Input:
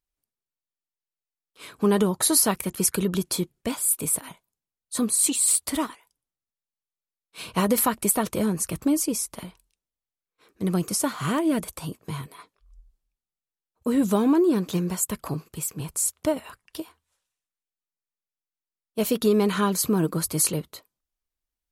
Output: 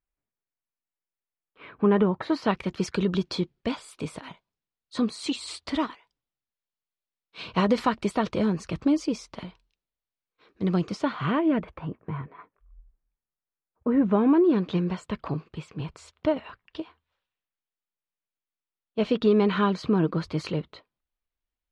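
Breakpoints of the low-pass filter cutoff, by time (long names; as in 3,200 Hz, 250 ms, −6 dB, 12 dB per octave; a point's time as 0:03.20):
low-pass filter 24 dB per octave
0:02.22 2,500 Hz
0:02.68 4,600 Hz
0:10.75 4,600 Hz
0:11.98 2,000 Hz
0:13.96 2,000 Hz
0:14.57 3,700 Hz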